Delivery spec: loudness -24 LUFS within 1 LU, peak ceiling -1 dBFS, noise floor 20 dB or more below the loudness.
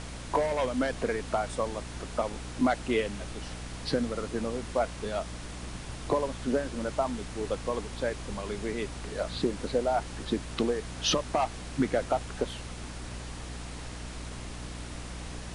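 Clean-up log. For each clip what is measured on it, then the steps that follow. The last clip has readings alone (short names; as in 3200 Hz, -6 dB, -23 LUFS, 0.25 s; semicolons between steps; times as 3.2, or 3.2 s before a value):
hum 60 Hz; harmonics up to 300 Hz; hum level -40 dBFS; noise floor -41 dBFS; noise floor target -53 dBFS; loudness -32.5 LUFS; peak -12.5 dBFS; loudness target -24.0 LUFS
-> de-hum 60 Hz, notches 5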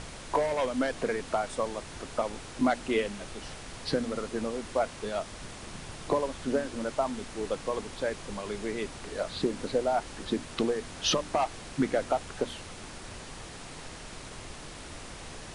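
hum none; noise floor -44 dBFS; noise floor target -52 dBFS
-> noise print and reduce 8 dB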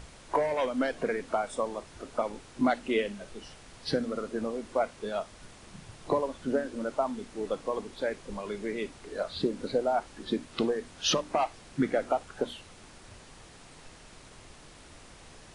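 noise floor -52 dBFS; loudness -32.0 LUFS; peak -13.0 dBFS; loudness target -24.0 LUFS
-> gain +8 dB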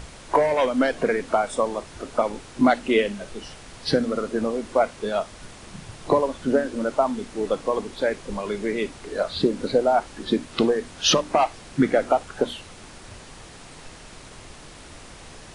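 loudness -24.0 LUFS; peak -5.0 dBFS; noise floor -44 dBFS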